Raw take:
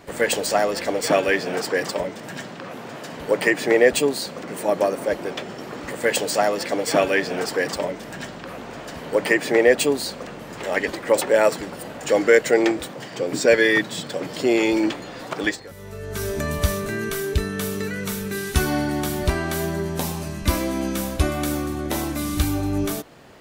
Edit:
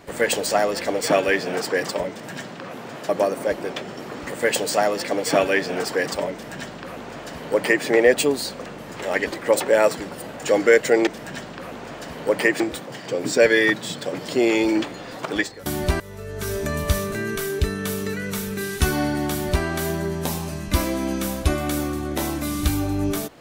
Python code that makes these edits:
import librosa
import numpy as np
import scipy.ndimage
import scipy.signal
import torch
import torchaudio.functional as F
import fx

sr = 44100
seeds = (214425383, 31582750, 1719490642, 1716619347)

y = fx.edit(x, sr, fx.cut(start_s=3.09, length_s=1.61),
    fx.duplicate(start_s=7.93, length_s=1.53, to_s=12.68),
    fx.duplicate(start_s=19.05, length_s=0.34, to_s=15.74), tone=tone)